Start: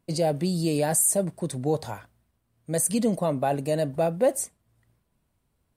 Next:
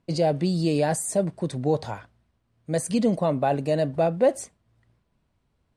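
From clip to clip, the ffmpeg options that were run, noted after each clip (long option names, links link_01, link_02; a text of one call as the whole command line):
ffmpeg -i in.wav -af "lowpass=5400,volume=2dB" out.wav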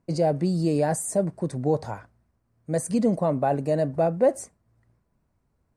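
ffmpeg -i in.wav -af "equalizer=frequency=3300:width=1.5:gain=-12.5" out.wav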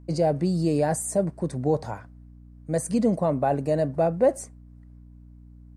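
ffmpeg -i in.wav -af "aeval=exprs='val(0)+0.00501*(sin(2*PI*60*n/s)+sin(2*PI*2*60*n/s)/2+sin(2*PI*3*60*n/s)/3+sin(2*PI*4*60*n/s)/4+sin(2*PI*5*60*n/s)/5)':channel_layout=same" out.wav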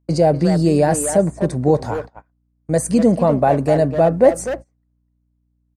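ffmpeg -i in.wav -filter_complex "[0:a]asplit=2[link_01][link_02];[link_02]adelay=250,highpass=300,lowpass=3400,asoftclip=type=hard:threshold=-20.5dB,volume=-7dB[link_03];[link_01][link_03]amix=inputs=2:normalize=0,agate=range=-26dB:threshold=-37dB:ratio=16:detection=peak,volume=8dB" out.wav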